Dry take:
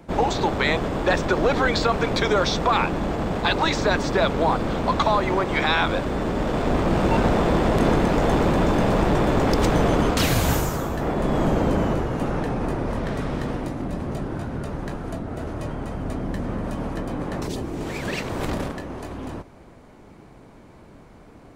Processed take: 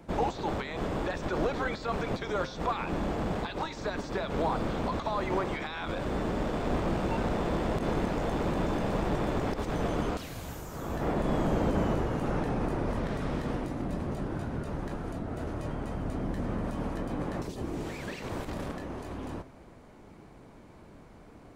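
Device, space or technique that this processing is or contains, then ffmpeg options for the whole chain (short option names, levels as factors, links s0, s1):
de-esser from a sidechain: -filter_complex "[0:a]asplit=2[s0][s1];[s1]highpass=5700,apad=whole_len=950608[s2];[s0][s2]sidechaincompress=threshold=0.00447:ratio=4:attack=0.94:release=56,bandreject=f=131.8:t=h:w=4,bandreject=f=263.6:t=h:w=4,bandreject=f=395.4:t=h:w=4,bandreject=f=527.2:t=h:w=4,bandreject=f=659:t=h:w=4,bandreject=f=790.8:t=h:w=4,bandreject=f=922.6:t=h:w=4,bandreject=f=1054.4:t=h:w=4,bandreject=f=1186.2:t=h:w=4,bandreject=f=1318:t=h:w=4,bandreject=f=1449.8:t=h:w=4,bandreject=f=1581.6:t=h:w=4,bandreject=f=1713.4:t=h:w=4,bandreject=f=1845.2:t=h:w=4,bandreject=f=1977:t=h:w=4,bandreject=f=2108.8:t=h:w=4,bandreject=f=2240.6:t=h:w=4,bandreject=f=2372.4:t=h:w=4,bandreject=f=2504.2:t=h:w=4,bandreject=f=2636:t=h:w=4,bandreject=f=2767.8:t=h:w=4,bandreject=f=2899.6:t=h:w=4,bandreject=f=3031.4:t=h:w=4,bandreject=f=3163.2:t=h:w=4,bandreject=f=3295:t=h:w=4,bandreject=f=3426.8:t=h:w=4,bandreject=f=3558.6:t=h:w=4,bandreject=f=3690.4:t=h:w=4,bandreject=f=3822.2:t=h:w=4,bandreject=f=3954:t=h:w=4,bandreject=f=4085.8:t=h:w=4,bandreject=f=4217.6:t=h:w=4,bandreject=f=4349.4:t=h:w=4,volume=0.596"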